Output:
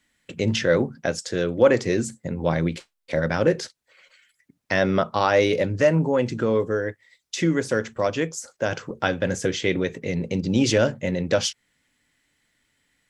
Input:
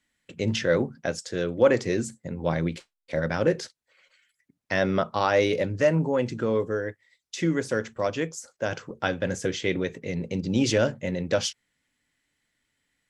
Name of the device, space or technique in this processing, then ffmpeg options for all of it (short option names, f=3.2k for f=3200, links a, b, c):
parallel compression: -filter_complex "[0:a]asplit=2[a][b];[b]acompressor=threshold=-35dB:ratio=6,volume=-3dB[c];[a][c]amix=inputs=2:normalize=0,volume=2dB"